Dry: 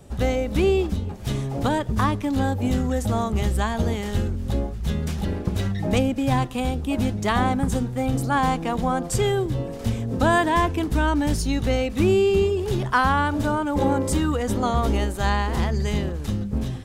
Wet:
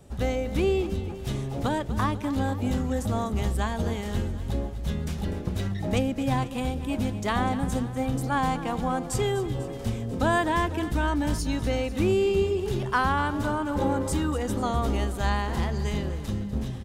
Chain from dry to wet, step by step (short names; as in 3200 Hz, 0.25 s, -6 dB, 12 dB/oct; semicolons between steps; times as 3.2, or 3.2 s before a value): feedback echo 0.247 s, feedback 59%, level -14 dB; gain -4.5 dB